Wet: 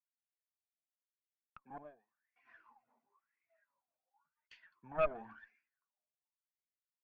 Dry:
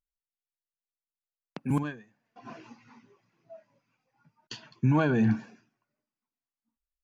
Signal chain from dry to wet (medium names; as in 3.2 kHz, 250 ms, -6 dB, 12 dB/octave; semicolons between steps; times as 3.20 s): wah-wah 0.94 Hz 630–2200 Hz, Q 14; Chebyshev shaper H 4 -8 dB, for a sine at -25 dBFS; trim +1 dB